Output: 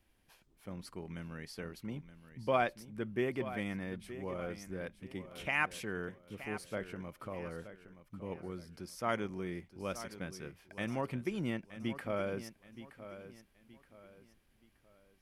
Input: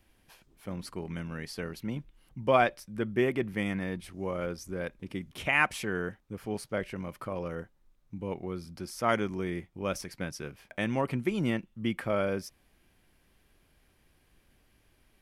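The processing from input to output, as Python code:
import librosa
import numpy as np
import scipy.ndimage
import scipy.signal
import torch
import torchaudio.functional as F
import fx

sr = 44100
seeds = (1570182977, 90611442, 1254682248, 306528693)

y = fx.echo_feedback(x, sr, ms=923, feedback_pct=35, wet_db=-13.0)
y = y * 10.0 ** (-7.0 / 20.0)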